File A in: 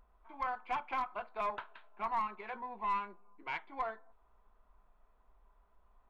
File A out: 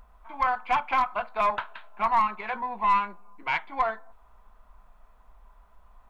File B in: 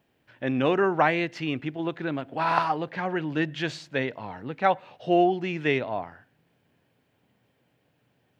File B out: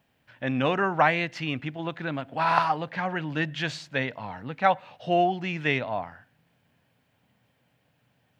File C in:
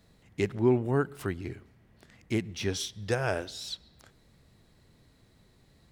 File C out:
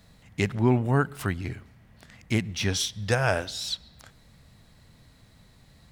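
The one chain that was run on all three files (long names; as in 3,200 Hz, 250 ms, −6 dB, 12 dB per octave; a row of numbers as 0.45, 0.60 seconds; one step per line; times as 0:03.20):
parametric band 370 Hz −9 dB 0.76 octaves
loudness normalisation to −27 LKFS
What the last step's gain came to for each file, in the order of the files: +12.5, +2.0, +7.0 decibels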